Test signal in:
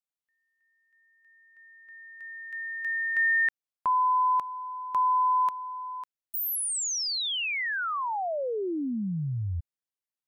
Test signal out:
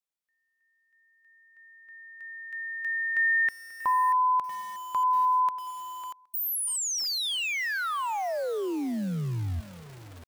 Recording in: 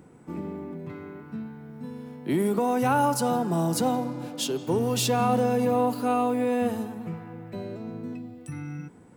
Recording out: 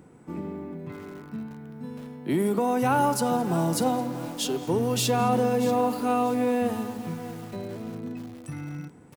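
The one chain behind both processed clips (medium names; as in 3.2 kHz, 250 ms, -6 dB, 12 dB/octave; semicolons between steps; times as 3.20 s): feedback delay 218 ms, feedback 25%, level -22 dB; bit-crushed delay 637 ms, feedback 35%, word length 6-bit, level -12.5 dB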